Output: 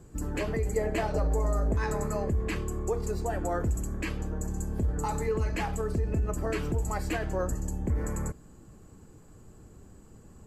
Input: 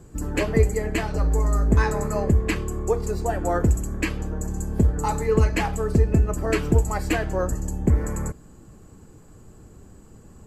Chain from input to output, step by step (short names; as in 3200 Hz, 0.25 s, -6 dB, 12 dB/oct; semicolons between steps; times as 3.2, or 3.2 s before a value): limiter -16 dBFS, peak gain reduction 10 dB; 0.76–1.75 bell 610 Hz +8.5 dB 1 oct; gain -4.5 dB